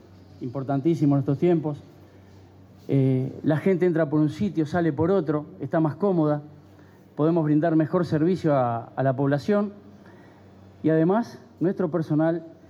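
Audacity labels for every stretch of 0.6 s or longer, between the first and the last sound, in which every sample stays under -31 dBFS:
1.740000	2.890000	silence
6.400000	7.190000	silence
9.690000	10.840000	silence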